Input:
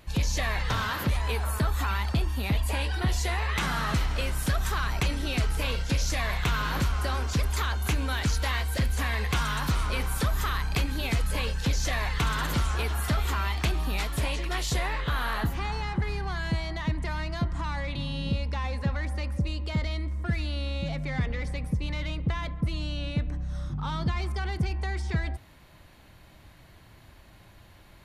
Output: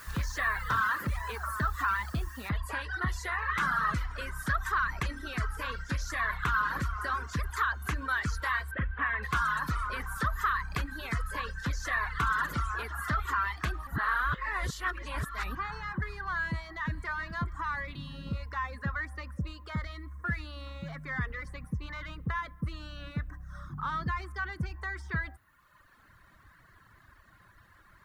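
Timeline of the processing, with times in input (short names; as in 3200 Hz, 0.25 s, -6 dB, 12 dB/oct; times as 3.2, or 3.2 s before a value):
2.49 noise floor step -43 dB -67 dB
8.71–9.23 steep low-pass 3200 Hz
13.87–15.55 reverse
16.41–17.06 echo throw 0.43 s, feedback 45%, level -11.5 dB
whole clip: low shelf 390 Hz +3.5 dB; reverb removal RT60 1.3 s; band shelf 1400 Hz +14.5 dB 1.1 oct; gain -9 dB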